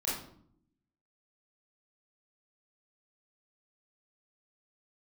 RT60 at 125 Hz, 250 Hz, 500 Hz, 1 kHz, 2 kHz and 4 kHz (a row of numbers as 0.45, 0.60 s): 1.0, 1.0, 0.70, 0.60, 0.45, 0.40 s